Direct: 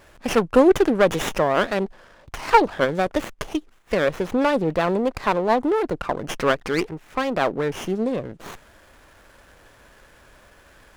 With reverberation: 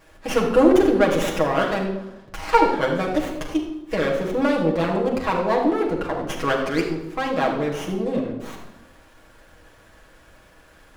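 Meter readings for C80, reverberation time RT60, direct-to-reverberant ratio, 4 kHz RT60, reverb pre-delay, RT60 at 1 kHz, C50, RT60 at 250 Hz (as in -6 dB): 7.5 dB, 0.90 s, -2.5 dB, 0.70 s, 6 ms, 0.85 s, 5.0 dB, 1.3 s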